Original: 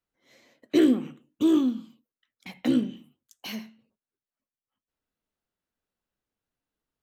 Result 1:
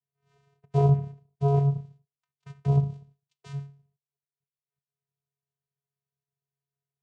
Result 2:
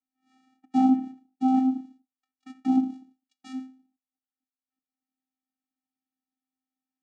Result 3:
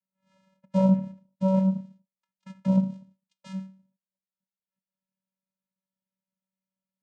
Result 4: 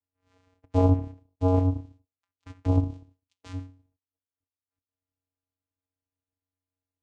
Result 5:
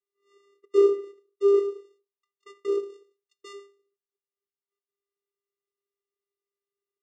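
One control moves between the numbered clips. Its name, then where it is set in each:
vocoder, frequency: 140, 260, 190, 92, 400 Hz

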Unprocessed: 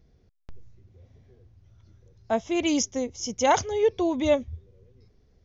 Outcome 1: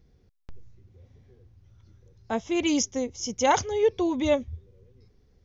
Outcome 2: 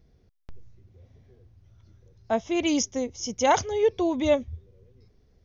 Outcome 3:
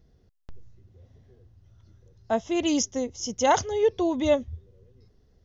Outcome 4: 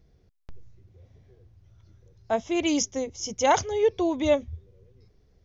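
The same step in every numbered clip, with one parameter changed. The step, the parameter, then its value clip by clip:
notch, frequency: 650, 7400, 2300, 240 Hz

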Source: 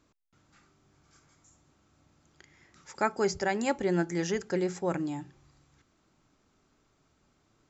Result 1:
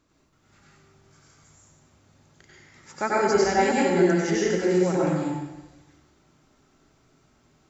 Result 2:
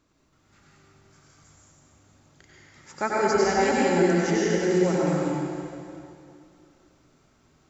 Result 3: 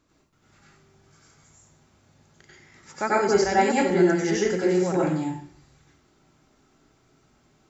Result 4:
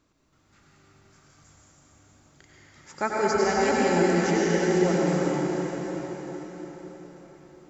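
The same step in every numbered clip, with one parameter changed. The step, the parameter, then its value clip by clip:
plate-style reverb, RT60: 1.1, 2.5, 0.51, 5.3 s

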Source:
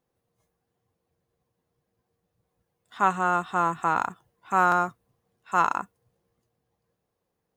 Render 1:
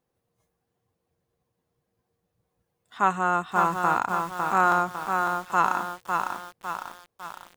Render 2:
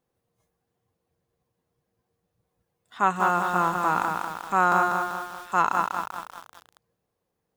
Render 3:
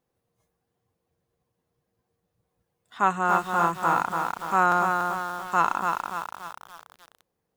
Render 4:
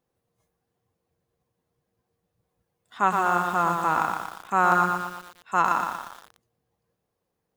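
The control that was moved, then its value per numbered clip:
lo-fi delay, time: 0.553, 0.195, 0.287, 0.118 s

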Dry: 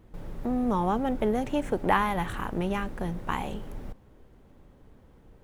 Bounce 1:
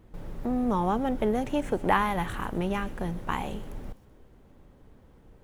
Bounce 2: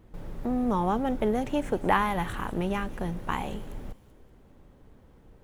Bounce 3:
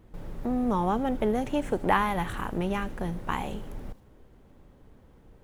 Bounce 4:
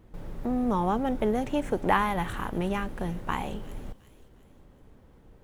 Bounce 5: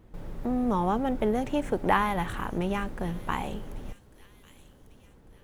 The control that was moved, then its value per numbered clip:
thin delay, time: 127, 192, 78, 357, 1147 ms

